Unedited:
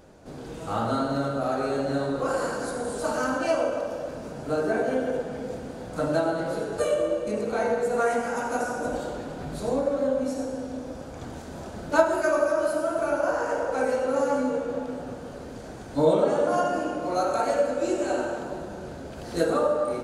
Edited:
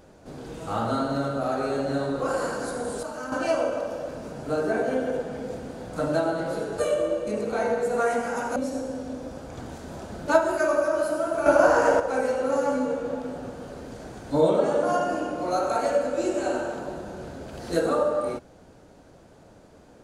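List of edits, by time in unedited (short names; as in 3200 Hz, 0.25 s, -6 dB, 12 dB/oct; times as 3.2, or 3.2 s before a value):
3.03–3.32 gain -8 dB
8.56–10.2 cut
13.1–13.64 gain +7.5 dB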